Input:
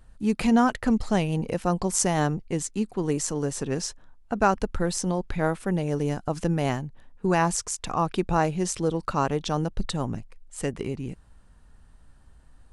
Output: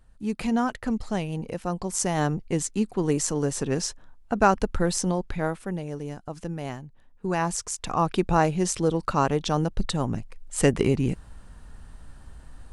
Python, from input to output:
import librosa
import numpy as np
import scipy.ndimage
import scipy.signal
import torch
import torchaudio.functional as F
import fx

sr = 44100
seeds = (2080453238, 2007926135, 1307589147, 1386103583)

y = fx.gain(x, sr, db=fx.line((1.85, -4.5), (2.47, 2.0), (5.01, 2.0), (6.02, -8.0), (6.83, -8.0), (8.08, 2.0), (10.07, 2.0), (10.61, 9.0)))